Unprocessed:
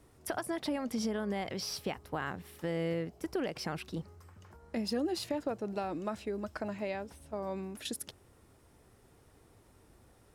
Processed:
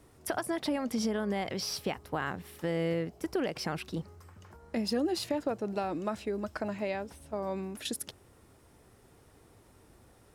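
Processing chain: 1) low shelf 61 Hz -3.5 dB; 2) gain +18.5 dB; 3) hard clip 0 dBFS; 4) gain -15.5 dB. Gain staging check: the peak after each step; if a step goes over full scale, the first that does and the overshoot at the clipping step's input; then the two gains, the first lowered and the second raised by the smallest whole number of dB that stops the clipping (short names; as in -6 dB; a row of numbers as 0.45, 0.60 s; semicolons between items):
-20.0, -1.5, -1.5, -17.0 dBFS; no overload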